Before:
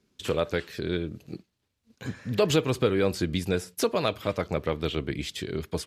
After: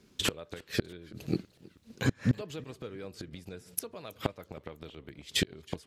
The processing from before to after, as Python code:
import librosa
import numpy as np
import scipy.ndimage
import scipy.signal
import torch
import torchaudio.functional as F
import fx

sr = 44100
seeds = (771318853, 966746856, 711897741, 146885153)

y = fx.gate_flip(x, sr, shuts_db=-22.0, range_db=-27)
y = fx.echo_warbled(y, sr, ms=323, feedback_pct=54, rate_hz=2.8, cents=149, wet_db=-23.0)
y = F.gain(torch.from_numpy(y), 8.5).numpy()